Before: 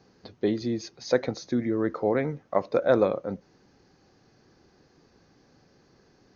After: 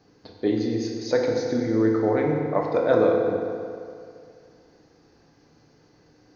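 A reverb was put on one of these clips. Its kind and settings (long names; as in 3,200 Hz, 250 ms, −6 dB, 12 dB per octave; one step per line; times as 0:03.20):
feedback delay network reverb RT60 2.4 s, low-frequency decay 0.8×, high-frequency decay 0.75×, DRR −1 dB
level −1 dB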